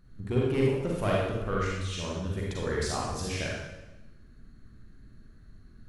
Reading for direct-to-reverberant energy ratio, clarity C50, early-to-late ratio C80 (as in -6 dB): -4.5 dB, -1.5 dB, 2.0 dB